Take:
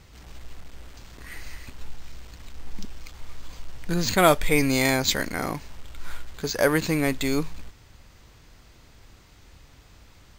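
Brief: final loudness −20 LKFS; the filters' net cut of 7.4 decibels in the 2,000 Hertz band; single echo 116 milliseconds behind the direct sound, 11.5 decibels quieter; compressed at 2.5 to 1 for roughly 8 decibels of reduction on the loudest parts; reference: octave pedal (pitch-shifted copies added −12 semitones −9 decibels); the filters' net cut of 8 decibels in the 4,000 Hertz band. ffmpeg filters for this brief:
ffmpeg -i in.wav -filter_complex "[0:a]equalizer=frequency=2000:width_type=o:gain=-7.5,equalizer=frequency=4000:width_type=o:gain=-7.5,acompressor=threshold=-27dB:ratio=2.5,aecho=1:1:116:0.266,asplit=2[link_01][link_02];[link_02]asetrate=22050,aresample=44100,atempo=2,volume=-9dB[link_03];[link_01][link_03]amix=inputs=2:normalize=0,volume=10.5dB" out.wav

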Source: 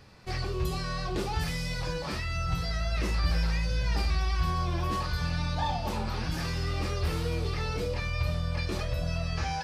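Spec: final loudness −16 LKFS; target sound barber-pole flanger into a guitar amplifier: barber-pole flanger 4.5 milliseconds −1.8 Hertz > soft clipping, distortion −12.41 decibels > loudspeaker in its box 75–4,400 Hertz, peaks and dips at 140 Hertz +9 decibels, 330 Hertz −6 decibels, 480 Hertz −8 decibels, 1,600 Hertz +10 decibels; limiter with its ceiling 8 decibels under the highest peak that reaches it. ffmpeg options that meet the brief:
ffmpeg -i in.wav -filter_complex "[0:a]alimiter=limit=-24dB:level=0:latency=1,asplit=2[link_01][link_02];[link_02]adelay=4.5,afreqshift=-1.8[link_03];[link_01][link_03]amix=inputs=2:normalize=1,asoftclip=threshold=-34.5dB,highpass=75,equalizer=frequency=140:width_type=q:width=4:gain=9,equalizer=frequency=330:width_type=q:width=4:gain=-6,equalizer=frequency=480:width_type=q:width=4:gain=-8,equalizer=frequency=1600:width_type=q:width=4:gain=10,lowpass=frequency=4400:width=0.5412,lowpass=frequency=4400:width=1.3066,volume=24dB" out.wav

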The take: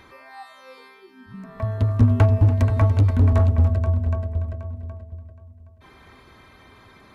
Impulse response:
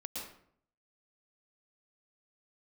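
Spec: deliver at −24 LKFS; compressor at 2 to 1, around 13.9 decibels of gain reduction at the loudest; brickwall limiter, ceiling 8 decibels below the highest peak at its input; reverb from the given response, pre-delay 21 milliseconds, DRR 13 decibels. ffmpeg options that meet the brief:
-filter_complex "[0:a]acompressor=threshold=-39dB:ratio=2,alimiter=level_in=4dB:limit=-24dB:level=0:latency=1,volume=-4dB,asplit=2[link_01][link_02];[1:a]atrim=start_sample=2205,adelay=21[link_03];[link_02][link_03]afir=irnorm=-1:irlink=0,volume=-12.5dB[link_04];[link_01][link_04]amix=inputs=2:normalize=0,volume=12dB"

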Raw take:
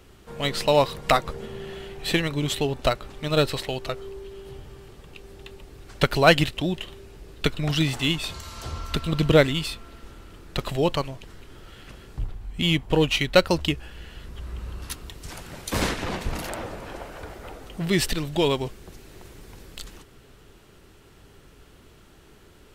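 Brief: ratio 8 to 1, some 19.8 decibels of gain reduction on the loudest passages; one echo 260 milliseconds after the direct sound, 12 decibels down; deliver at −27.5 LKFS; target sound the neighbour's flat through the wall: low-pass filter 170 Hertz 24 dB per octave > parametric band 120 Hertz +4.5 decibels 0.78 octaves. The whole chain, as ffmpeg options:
ffmpeg -i in.wav -af "acompressor=threshold=-32dB:ratio=8,lowpass=frequency=170:width=0.5412,lowpass=frequency=170:width=1.3066,equalizer=frequency=120:width_type=o:width=0.78:gain=4.5,aecho=1:1:260:0.251,volume=15.5dB" out.wav

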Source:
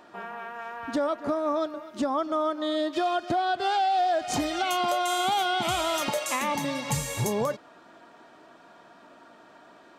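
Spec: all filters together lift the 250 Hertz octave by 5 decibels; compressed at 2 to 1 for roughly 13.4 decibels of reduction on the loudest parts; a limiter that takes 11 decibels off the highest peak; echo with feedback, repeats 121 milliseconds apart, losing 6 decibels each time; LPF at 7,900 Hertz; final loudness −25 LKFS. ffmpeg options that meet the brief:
ffmpeg -i in.wav -af "lowpass=7900,equalizer=frequency=250:width_type=o:gain=6.5,acompressor=threshold=-45dB:ratio=2,alimiter=level_in=12.5dB:limit=-24dB:level=0:latency=1,volume=-12.5dB,aecho=1:1:121|242|363|484|605|726:0.501|0.251|0.125|0.0626|0.0313|0.0157,volume=18.5dB" out.wav

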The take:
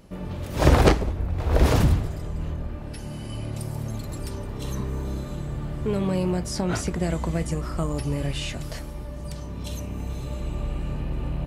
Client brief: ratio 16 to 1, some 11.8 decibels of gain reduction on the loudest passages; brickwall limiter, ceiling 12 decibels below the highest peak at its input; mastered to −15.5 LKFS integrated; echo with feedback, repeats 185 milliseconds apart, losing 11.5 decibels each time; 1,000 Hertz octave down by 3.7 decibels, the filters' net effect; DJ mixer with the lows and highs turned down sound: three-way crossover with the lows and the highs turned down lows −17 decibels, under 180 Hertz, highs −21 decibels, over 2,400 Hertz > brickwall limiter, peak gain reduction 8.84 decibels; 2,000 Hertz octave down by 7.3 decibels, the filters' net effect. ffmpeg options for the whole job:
ffmpeg -i in.wav -filter_complex "[0:a]equalizer=frequency=1000:width_type=o:gain=-3.5,equalizer=frequency=2000:width_type=o:gain=-5,acompressor=threshold=-23dB:ratio=16,alimiter=level_in=2dB:limit=-24dB:level=0:latency=1,volume=-2dB,acrossover=split=180 2400:gain=0.141 1 0.0891[link_01][link_02][link_03];[link_01][link_02][link_03]amix=inputs=3:normalize=0,aecho=1:1:185|370|555:0.266|0.0718|0.0194,volume=28.5dB,alimiter=limit=-6dB:level=0:latency=1" out.wav

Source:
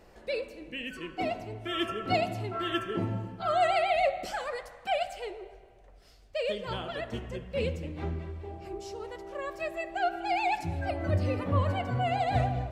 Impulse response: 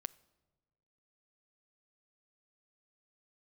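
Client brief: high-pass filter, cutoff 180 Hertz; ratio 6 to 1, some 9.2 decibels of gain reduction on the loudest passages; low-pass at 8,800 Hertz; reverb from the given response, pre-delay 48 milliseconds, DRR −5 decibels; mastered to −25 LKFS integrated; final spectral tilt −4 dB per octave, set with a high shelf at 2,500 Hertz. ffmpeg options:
-filter_complex "[0:a]highpass=180,lowpass=8800,highshelf=frequency=2500:gain=-6,acompressor=threshold=-33dB:ratio=6,asplit=2[link_01][link_02];[1:a]atrim=start_sample=2205,adelay=48[link_03];[link_02][link_03]afir=irnorm=-1:irlink=0,volume=8dB[link_04];[link_01][link_04]amix=inputs=2:normalize=0,volume=7dB"

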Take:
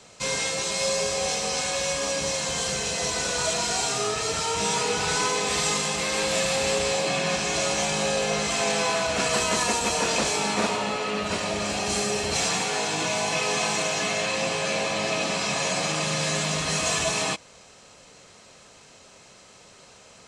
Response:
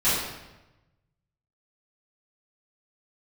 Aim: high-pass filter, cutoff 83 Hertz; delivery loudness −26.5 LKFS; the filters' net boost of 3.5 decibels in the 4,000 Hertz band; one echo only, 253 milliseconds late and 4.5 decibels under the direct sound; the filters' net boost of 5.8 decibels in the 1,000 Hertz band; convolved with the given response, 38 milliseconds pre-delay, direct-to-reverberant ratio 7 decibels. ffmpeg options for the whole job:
-filter_complex "[0:a]highpass=83,equalizer=frequency=1000:width_type=o:gain=7,equalizer=frequency=4000:width_type=o:gain=4,aecho=1:1:253:0.596,asplit=2[link_01][link_02];[1:a]atrim=start_sample=2205,adelay=38[link_03];[link_02][link_03]afir=irnorm=-1:irlink=0,volume=-22.5dB[link_04];[link_01][link_04]amix=inputs=2:normalize=0,volume=-7dB"

